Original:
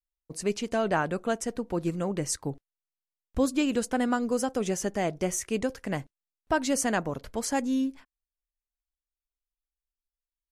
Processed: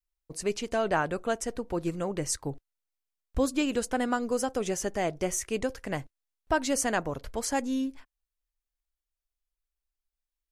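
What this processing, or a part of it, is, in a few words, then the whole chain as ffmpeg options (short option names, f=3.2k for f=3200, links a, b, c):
low shelf boost with a cut just above: -af "lowshelf=f=63:g=7.5,equalizer=f=200:t=o:w=0.93:g=-5.5"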